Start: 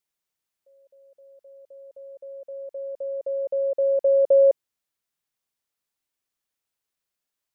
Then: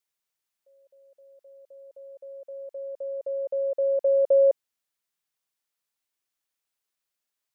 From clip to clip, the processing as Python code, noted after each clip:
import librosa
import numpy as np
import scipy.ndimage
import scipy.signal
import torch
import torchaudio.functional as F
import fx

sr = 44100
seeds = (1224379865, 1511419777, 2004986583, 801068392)

y = fx.low_shelf(x, sr, hz=480.0, db=-6.0)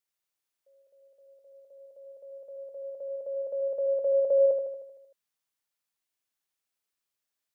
y = fx.echo_feedback(x, sr, ms=77, feedback_pct=58, wet_db=-6.0)
y = F.gain(torch.from_numpy(y), -3.0).numpy()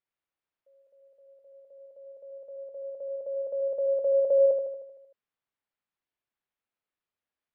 y = fx.air_absorb(x, sr, metres=370.0)
y = F.gain(torch.from_numpy(y), 2.0).numpy()